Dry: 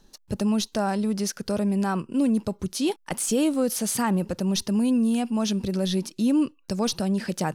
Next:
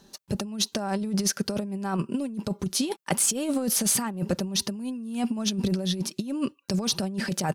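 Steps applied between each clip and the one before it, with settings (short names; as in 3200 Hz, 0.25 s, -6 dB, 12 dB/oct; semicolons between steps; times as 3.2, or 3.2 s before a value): HPF 74 Hz; comb 5.1 ms, depth 33%; negative-ratio compressor -26 dBFS, ratio -0.5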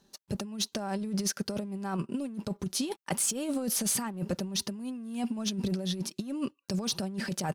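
sample leveller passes 1; gain -8.5 dB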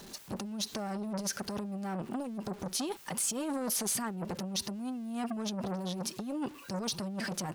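zero-crossing step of -44 dBFS; limiter -23.5 dBFS, peak gain reduction 5.5 dB; core saturation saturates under 630 Hz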